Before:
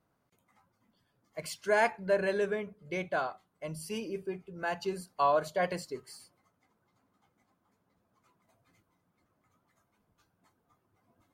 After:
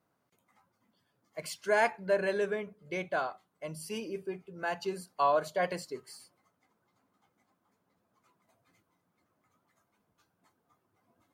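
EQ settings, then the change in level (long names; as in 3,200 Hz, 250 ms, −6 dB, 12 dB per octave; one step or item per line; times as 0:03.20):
high-pass filter 150 Hz 6 dB per octave
0.0 dB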